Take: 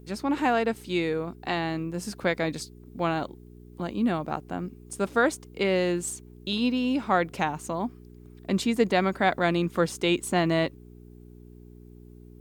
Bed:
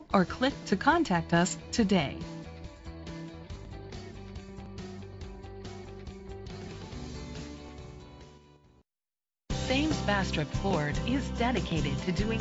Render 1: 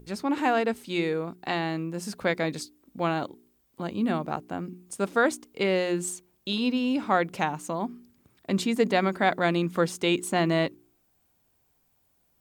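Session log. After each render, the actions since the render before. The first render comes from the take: de-hum 60 Hz, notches 7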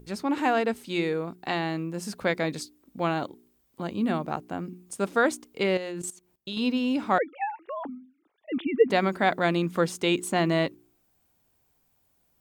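5.77–6.57 s: level held to a coarse grid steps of 17 dB; 7.18–8.90 s: formants replaced by sine waves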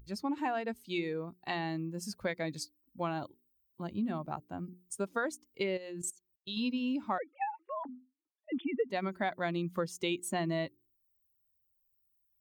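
expander on every frequency bin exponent 1.5; compression 4:1, threshold -31 dBFS, peak gain reduction 14.5 dB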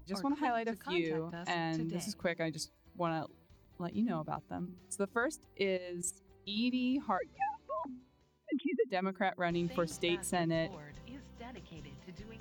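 add bed -20 dB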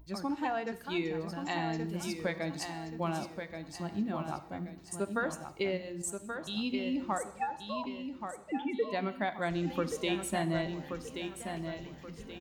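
feedback delay 1129 ms, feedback 35%, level -7 dB; gated-style reverb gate 280 ms falling, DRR 11.5 dB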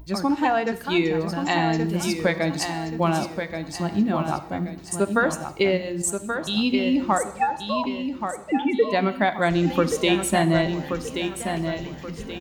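trim +12 dB

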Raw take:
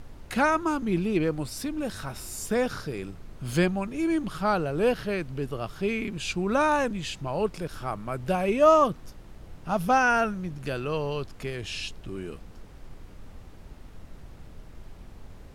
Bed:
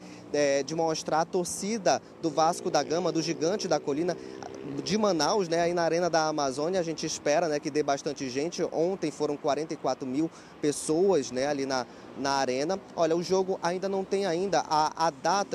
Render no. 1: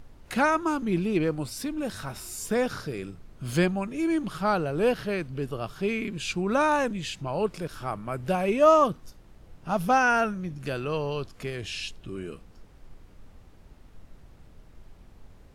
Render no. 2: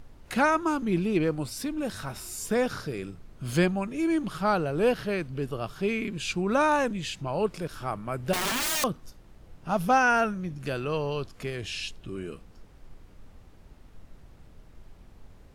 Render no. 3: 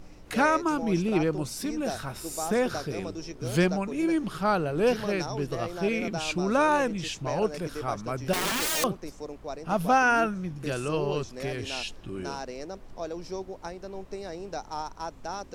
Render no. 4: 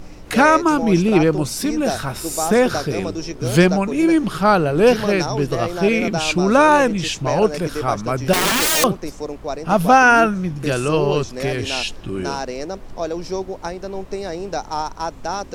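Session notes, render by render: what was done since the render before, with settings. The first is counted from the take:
noise print and reduce 6 dB
8.33–8.84 s: integer overflow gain 23.5 dB
add bed -10 dB
trim +10.5 dB; peak limiter -2 dBFS, peak gain reduction 1.5 dB

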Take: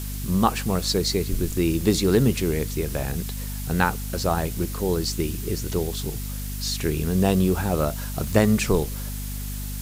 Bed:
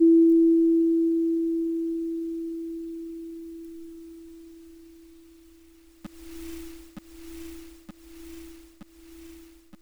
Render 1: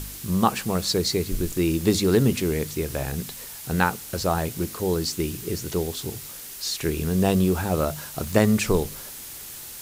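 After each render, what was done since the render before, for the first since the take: de-hum 50 Hz, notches 5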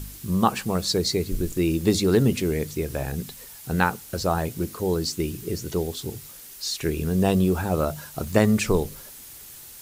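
noise reduction 6 dB, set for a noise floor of -39 dBFS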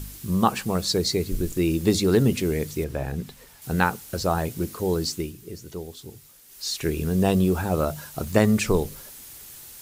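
2.84–3.62 s: treble shelf 4.1 kHz -10.5 dB; 5.11–6.69 s: dip -9 dB, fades 0.23 s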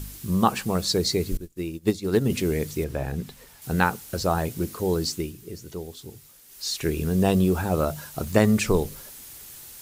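1.37–2.30 s: upward expansion 2.5:1, over -34 dBFS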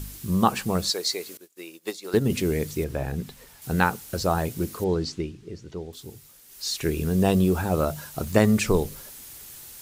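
0.90–2.14 s: high-pass 610 Hz; 4.84–5.93 s: distance through air 120 m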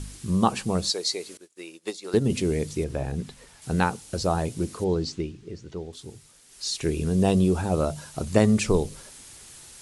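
steep low-pass 11 kHz 96 dB/octave; dynamic bell 1.6 kHz, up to -5 dB, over -43 dBFS, Q 1.2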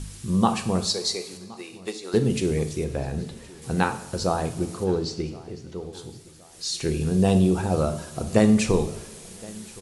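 feedback delay 1069 ms, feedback 43%, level -22.5 dB; two-slope reverb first 0.55 s, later 2.5 s, from -17 dB, DRR 6.5 dB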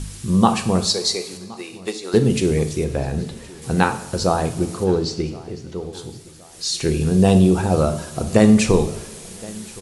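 trim +5.5 dB; peak limiter -1 dBFS, peak gain reduction 2.5 dB

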